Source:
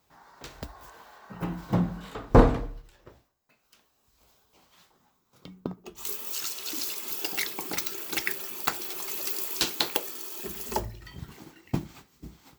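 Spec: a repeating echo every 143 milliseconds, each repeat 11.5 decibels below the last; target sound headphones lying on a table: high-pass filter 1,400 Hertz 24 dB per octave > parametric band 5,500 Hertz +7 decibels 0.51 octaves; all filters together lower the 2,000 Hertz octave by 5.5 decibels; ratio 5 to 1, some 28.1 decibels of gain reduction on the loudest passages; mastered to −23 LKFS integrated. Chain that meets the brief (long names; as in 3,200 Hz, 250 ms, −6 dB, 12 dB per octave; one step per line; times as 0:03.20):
parametric band 2,000 Hz −6.5 dB
downward compressor 5 to 1, threshold −44 dBFS
high-pass filter 1,400 Hz 24 dB per octave
parametric band 5,500 Hz +7 dB 0.51 octaves
repeating echo 143 ms, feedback 27%, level −11.5 dB
level +21 dB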